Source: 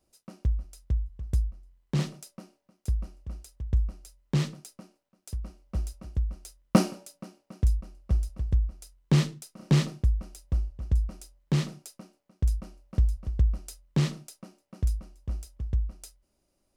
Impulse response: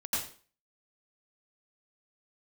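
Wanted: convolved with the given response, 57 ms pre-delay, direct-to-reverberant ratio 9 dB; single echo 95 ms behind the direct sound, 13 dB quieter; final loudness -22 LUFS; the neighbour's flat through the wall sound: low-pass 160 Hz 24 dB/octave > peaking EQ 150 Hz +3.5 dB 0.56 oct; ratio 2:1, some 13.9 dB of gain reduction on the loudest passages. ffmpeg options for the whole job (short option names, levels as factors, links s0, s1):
-filter_complex "[0:a]acompressor=threshold=0.00891:ratio=2,aecho=1:1:95:0.224,asplit=2[s0][s1];[1:a]atrim=start_sample=2205,adelay=57[s2];[s1][s2]afir=irnorm=-1:irlink=0,volume=0.188[s3];[s0][s3]amix=inputs=2:normalize=0,lowpass=f=160:w=0.5412,lowpass=f=160:w=1.3066,equalizer=f=150:t=o:w=0.56:g=3.5,volume=8.91"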